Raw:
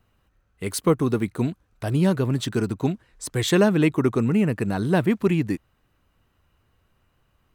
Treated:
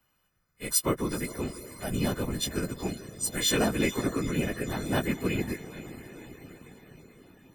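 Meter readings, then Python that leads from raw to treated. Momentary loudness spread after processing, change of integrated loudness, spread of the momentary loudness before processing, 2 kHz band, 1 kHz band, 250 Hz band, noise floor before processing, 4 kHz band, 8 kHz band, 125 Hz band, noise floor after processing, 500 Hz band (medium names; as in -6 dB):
18 LU, -6.5 dB, 11 LU, -3.0 dB, -5.0 dB, -8.5 dB, -68 dBFS, +0.5 dB, +4.5 dB, -10.0 dB, -73 dBFS, -8.0 dB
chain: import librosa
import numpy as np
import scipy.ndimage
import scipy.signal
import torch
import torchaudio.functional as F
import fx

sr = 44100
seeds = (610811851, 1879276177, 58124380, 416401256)

y = fx.freq_snap(x, sr, grid_st=3)
y = fx.echo_diffused(y, sr, ms=463, feedback_pct=62, wet_db=-14)
y = fx.whisperise(y, sr, seeds[0])
y = y * 10.0 ** (-8.0 / 20.0)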